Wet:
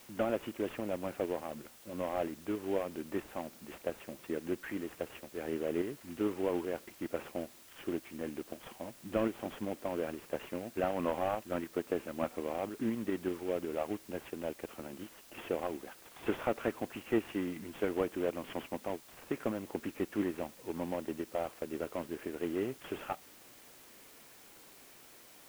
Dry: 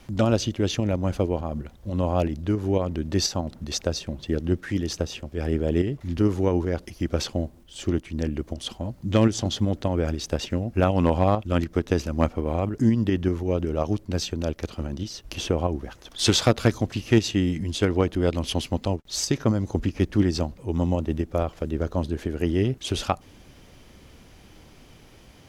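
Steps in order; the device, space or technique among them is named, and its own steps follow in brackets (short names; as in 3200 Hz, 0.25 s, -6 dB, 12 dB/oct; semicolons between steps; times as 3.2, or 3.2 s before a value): army field radio (BPF 320–2900 Hz; CVSD 16 kbps; white noise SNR 20 dB); gain -6.5 dB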